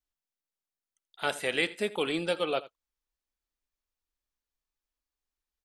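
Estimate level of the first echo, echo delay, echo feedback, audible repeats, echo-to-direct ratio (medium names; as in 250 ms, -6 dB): -18.5 dB, 83 ms, no regular repeats, 1, -18.5 dB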